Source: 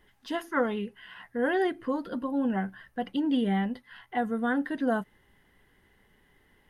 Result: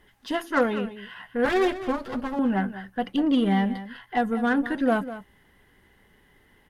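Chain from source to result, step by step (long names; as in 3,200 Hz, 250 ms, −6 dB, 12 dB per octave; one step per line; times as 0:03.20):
0:01.45–0:02.39: lower of the sound and its delayed copy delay 8.2 ms
harmonic generator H 8 −28 dB, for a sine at −13.5 dBFS
single-tap delay 199 ms −13.5 dB
level +4.5 dB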